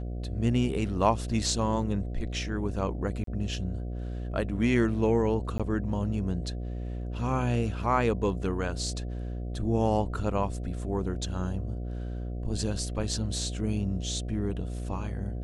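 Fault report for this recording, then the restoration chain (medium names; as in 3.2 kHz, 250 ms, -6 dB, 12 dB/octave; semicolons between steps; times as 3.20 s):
buzz 60 Hz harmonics 12 -34 dBFS
3.24–3.27 s: dropout 33 ms
5.58–5.60 s: dropout 16 ms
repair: de-hum 60 Hz, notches 12; interpolate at 3.24 s, 33 ms; interpolate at 5.58 s, 16 ms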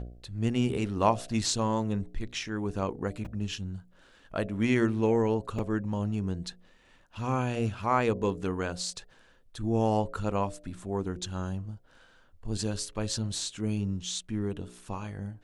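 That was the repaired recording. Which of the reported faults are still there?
nothing left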